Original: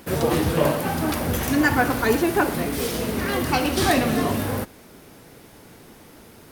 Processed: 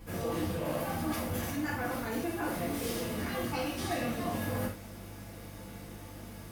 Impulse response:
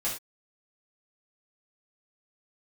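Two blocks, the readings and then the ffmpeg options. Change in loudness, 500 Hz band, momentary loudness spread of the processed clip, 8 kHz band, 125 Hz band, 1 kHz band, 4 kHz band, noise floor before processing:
−12.5 dB, −12.5 dB, 13 LU, −11.5 dB, −10.5 dB, −12.5 dB, −12.5 dB, −48 dBFS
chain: -filter_complex "[0:a]areverse,acompressor=threshold=-30dB:ratio=6,areverse,aeval=exprs='val(0)+0.00708*(sin(2*PI*50*n/s)+sin(2*PI*2*50*n/s)/2+sin(2*PI*3*50*n/s)/3+sin(2*PI*4*50*n/s)/4+sin(2*PI*5*50*n/s)/5)':channel_layout=same[link_01];[1:a]atrim=start_sample=2205[link_02];[link_01][link_02]afir=irnorm=-1:irlink=0,volume=-7.5dB"

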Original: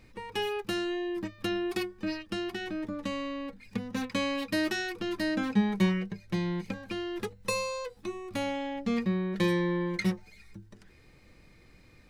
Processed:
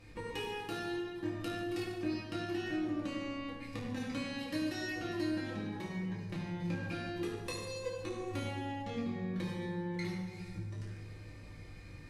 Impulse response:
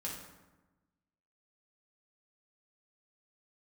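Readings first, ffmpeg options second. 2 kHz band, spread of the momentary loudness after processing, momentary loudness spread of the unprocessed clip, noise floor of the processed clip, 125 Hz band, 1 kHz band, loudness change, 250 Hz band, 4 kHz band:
−7.0 dB, 7 LU, 9 LU, −50 dBFS, −4.5 dB, −6.5 dB, −7.0 dB, −6.5 dB, −7.5 dB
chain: -filter_complex "[0:a]acompressor=threshold=-40dB:ratio=6[link_01];[1:a]atrim=start_sample=2205,asetrate=24696,aresample=44100[link_02];[link_01][link_02]afir=irnorm=-1:irlink=0"

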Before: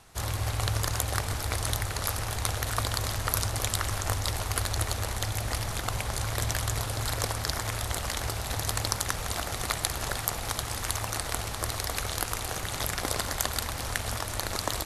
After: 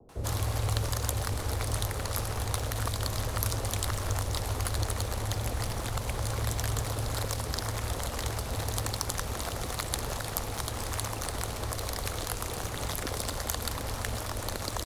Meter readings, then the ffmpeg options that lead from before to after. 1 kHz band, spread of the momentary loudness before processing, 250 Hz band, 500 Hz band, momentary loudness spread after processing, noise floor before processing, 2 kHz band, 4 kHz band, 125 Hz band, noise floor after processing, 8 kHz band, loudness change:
−3.0 dB, 3 LU, +0.5 dB, 0.0 dB, 3 LU, −36 dBFS, −5.0 dB, −4.0 dB, 0.0 dB, −37 dBFS, −3.5 dB, −2.5 dB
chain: -filter_complex "[0:a]equalizer=frequency=250:width_type=o:width=1:gain=6,equalizer=frequency=500:width_type=o:width=1:gain=10,equalizer=frequency=1000:width_type=o:width=1:gain=4,acrossover=split=150|3000[link_01][link_02][link_03];[link_02]acompressor=threshold=-37dB:ratio=2.5[link_04];[link_01][link_04][link_03]amix=inputs=3:normalize=0,acrossover=split=290|450|2300[link_05][link_06][link_07][link_08];[link_08]acrusher=bits=3:mode=log:mix=0:aa=0.000001[link_09];[link_05][link_06][link_07][link_09]amix=inputs=4:normalize=0,acrossover=split=580[link_10][link_11];[link_11]adelay=90[link_12];[link_10][link_12]amix=inputs=2:normalize=0,adynamicequalizer=threshold=0.00398:dfrequency=3000:dqfactor=0.7:tfrequency=3000:tqfactor=0.7:attack=5:release=100:ratio=0.375:range=2:mode=cutabove:tftype=highshelf"

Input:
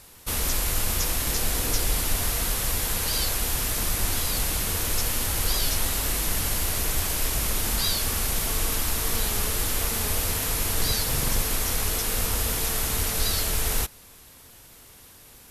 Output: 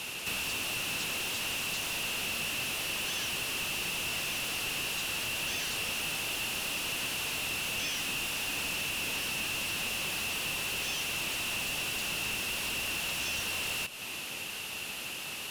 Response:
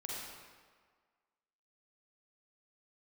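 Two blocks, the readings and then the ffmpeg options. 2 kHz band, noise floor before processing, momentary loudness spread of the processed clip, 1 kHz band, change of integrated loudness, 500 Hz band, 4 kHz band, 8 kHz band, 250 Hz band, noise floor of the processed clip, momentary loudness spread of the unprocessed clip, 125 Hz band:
+1.0 dB, −50 dBFS, 2 LU, −7.0 dB, −7.0 dB, −9.0 dB, −2.5 dB, −10.0 dB, −9.0 dB, −40 dBFS, 1 LU, −16.5 dB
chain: -filter_complex "[0:a]highpass=frequency=1300:width_type=q:width=6.6,aeval=exprs='val(0)*sin(2*PI*1400*n/s)':channel_layout=same,asoftclip=type=tanh:threshold=-21dB,acompressor=threshold=-39dB:ratio=6,asplit=2[link_01][link_02];[link_02]highpass=frequency=720:poles=1,volume=21dB,asoftclip=type=tanh:threshold=-28dB[link_03];[link_01][link_03]amix=inputs=2:normalize=0,lowpass=frequency=3800:poles=1,volume=-6dB,volume=4dB"

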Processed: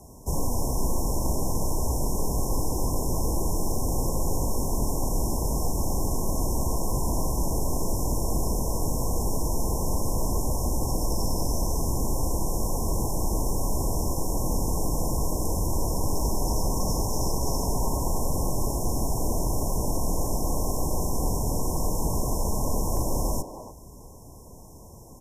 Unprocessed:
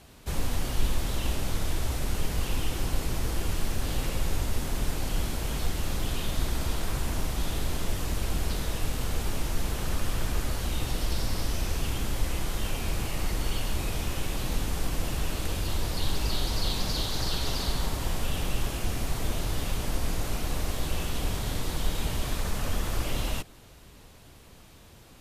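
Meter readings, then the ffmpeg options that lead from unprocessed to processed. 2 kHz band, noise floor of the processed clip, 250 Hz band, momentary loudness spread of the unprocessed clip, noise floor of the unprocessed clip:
below −40 dB, −46 dBFS, +5.5 dB, 3 LU, −51 dBFS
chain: -filter_complex "[0:a]afftfilt=real='re*(1-between(b*sr/4096,1100,5200))':imag='im*(1-between(b*sr/4096,1100,5200))':win_size=4096:overlap=0.75,acrossover=split=170[link_01][link_02];[link_01]asoftclip=type=tanh:threshold=-26.5dB[link_03];[link_03][link_02]amix=inputs=2:normalize=0,asplit=2[link_04][link_05];[link_05]adelay=290,highpass=300,lowpass=3400,asoftclip=type=hard:threshold=-29.5dB,volume=-7dB[link_06];[link_04][link_06]amix=inputs=2:normalize=0,volume=6dB"

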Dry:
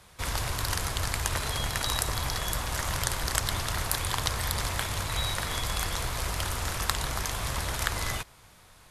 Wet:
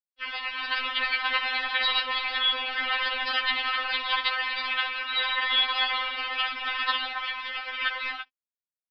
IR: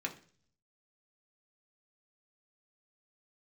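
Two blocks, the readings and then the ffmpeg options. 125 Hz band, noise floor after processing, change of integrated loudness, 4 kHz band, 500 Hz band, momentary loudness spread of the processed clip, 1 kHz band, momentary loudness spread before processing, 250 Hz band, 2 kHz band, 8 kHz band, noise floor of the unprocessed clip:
below −35 dB, below −85 dBFS, +4.0 dB, +7.0 dB, −4.5 dB, 7 LU, +3.5 dB, 3 LU, −10.0 dB, +8.5 dB, below −35 dB, −55 dBFS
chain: -filter_complex "[0:a]asplit=2[link_01][link_02];[link_02]adelay=63,lowpass=frequency=2100:poles=1,volume=-12dB,asplit=2[link_03][link_04];[link_04]adelay=63,lowpass=frequency=2100:poles=1,volume=0.47,asplit=2[link_05][link_06];[link_06]adelay=63,lowpass=frequency=2100:poles=1,volume=0.47,asplit=2[link_07][link_08];[link_08]adelay=63,lowpass=frequency=2100:poles=1,volume=0.47,asplit=2[link_09][link_10];[link_10]adelay=63,lowpass=frequency=2100:poles=1,volume=0.47[link_11];[link_01][link_03][link_05][link_07][link_09][link_11]amix=inputs=6:normalize=0,asplit=2[link_12][link_13];[link_13]highpass=frequency=720:poles=1,volume=15dB,asoftclip=type=tanh:threshold=-1dB[link_14];[link_12][link_14]amix=inputs=2:normalize=0,lowpass=frequency=3000:poles=1,volume=-6dB,adynamicequalizer=threshold=0.01:dfrequency=1900:dqfactor=1.1:tfrequency=1900:tqfactor=1.1:attack=5:release=100:ratio=0.375:range=2.5:mode=boostabove:tftype=bell,dynaudnorm=framelen=220:gausssize=7:maxgain=7dB,aresample=11025,aeval=exprs='sgn(val(0))*max(abs(val(0))-0.0335,0)':channel_layout=same,aresample=44100,equalizer=frequency=2800:width_type=o:width=0.82:gain=8,afftdn=noise_reduction=12:noise_floor=-29,afftfilt=real='re*3.46*eq(mod(b,12),0)':imag='im*3.46*eq(mod(b,12),0)':win_size=2048:overlap=0.75,volume=-3.5dB"

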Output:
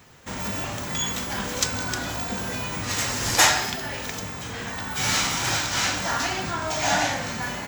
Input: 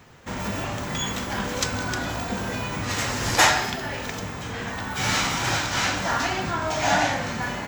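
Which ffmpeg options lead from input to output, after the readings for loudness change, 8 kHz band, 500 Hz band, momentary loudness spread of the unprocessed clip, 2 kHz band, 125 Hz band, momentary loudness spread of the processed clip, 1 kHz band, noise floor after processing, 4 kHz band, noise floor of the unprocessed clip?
+0.5 dB, +3.5 dB, −2.5 dB, 11 LU, −1.0 dB, −2.5 dB, 11 LU, −2.0 dB, −34 dBFS, +1.5 dB, −33 dBFS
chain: -af "highshelf=frequency=4200:gain=8.5,volume=-2.5dB"

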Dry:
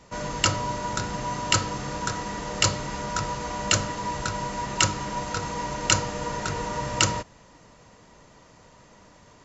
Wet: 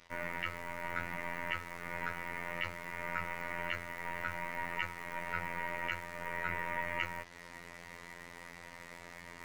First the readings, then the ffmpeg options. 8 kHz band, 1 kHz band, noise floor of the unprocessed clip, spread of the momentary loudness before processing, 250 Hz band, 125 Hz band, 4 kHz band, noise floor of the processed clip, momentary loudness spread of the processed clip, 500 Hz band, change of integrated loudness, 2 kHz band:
can't be measured, −12.0 dB, −54 dBFS, 7 LU, −16.0 dB, −18.0 dB, −20.0 dB, −53 dBFS, 13 LU, −12.5 dB, −13.0 dB, −5.0 dB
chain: -filter_complex "[0:a]highpass=frequency=61:poles=1,asplit=2[link_01][link_02];[link_02]acompressor=threshold=-38dB:ratio=12,volume=-0.5dB[link_03];[link_01][link_03]amix=inputs=2:normalize=0,alimiter=limit=-12.5dB:level=0:latency=1:release=498,areverse,acompressor=mode=upward:threshold=-31dB:ratio=2.5,areverse,aeval=exprs='0.237*(cos(1*acos(clip(val(0)/0.237,-1,1)))-cos(1*PI/2))+0.00944*(cos(2*acos(clip(val(0)/0.237,-1,1)))-cos(2*PI/2))+0.0376*(cos(3*acos(clip(val(0)/0.237,-1,1)))-cos(3*PI/2))+0.0266*(cos(6*acos(clip(val(0)/0.237,-1,1)))-cos(6*PI/2))+0.0335*(cos(8*acos(clip(val(0)/0.237,-1,1)))-cos(8*PI/2))':channel_layout=same,lowpass=frequency=2100:width_type=q:width=5.9,aeval=exprs='val(0)+0.000891*(sin(2*PI*60*n/s)+sin(2*PI*2*60*n/s)/2+sin(2*PI*3*60*n/s)/3+sin(2*PI*4*60*n/s)/4+sin(2*PI*5*60*n/s)/5)':channel_layout=same,acrusher=bits=6:mix=0:aa=0.5,afftfilt=real='hypot(re,im)*cos(PI*b)':imag='0':win_size=2048:overlap=0.75,asoftclip=type=tanh:threshold=-9.5dB,volume=-5.5dB"

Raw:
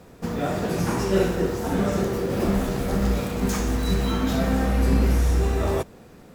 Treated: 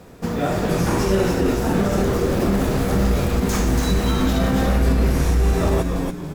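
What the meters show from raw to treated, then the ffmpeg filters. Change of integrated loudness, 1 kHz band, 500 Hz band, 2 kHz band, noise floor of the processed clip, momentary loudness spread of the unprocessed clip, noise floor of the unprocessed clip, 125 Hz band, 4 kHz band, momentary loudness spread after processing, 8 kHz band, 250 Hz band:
+4.0 dB, +4.0 dB, +3.5 dB, +4.5 dB, −31 dBFS, 5 LU, −48 dBFS, +4.5 dB, +4.5 dB, 3 LU, +4.5 dB, +4.0 dB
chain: -filter_complex "[0:a]asplit=6[link_01][link_02][link_03][link_04][link_05][link_06];[link_02]adelay=284,afreqshift=-120,volume=-5dB[link_07];[link_03]adelay=568,afreqshift=-240,volume=-13.4dB[link_08];[link_04]adelay=852,afreqshift=-360,volume=-21.8dB[link_09];[link_05]adelay=1136,afreqshift=-480,volume=-30.2dB[link_10];[link_06]adelay=1420,afreqshift=-600,volume=-38.6dB[link_11];[link_01][link_07][link_08][link_09][link_10][link_11]amix=inputs=6:normalize=0,alimiter=level_in=12.5dB:limit=-1dB:release=50:level=0:latency=1,volume=-8.5dB"

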